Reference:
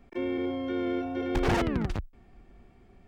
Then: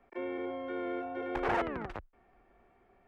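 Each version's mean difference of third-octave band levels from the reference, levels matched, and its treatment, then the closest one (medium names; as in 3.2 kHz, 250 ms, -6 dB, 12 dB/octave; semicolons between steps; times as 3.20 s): 4.5 dB: three-band isolator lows -16 dB, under 420 Hz, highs -17 dB, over 2.3 kHz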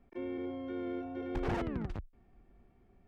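1.5 dB: treble shelf 2.9 kHz -10 dB; trim -8 dB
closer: second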